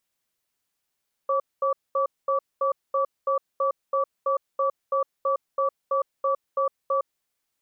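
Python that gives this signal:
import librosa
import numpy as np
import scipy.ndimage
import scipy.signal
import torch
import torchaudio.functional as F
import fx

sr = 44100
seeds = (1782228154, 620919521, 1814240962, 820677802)

y = fx.cadence(sr, length_s=5.89, low_hz=543.0, high_hz=1150.0, on_s=0.11, off_s=0.22, level_db=-23.0)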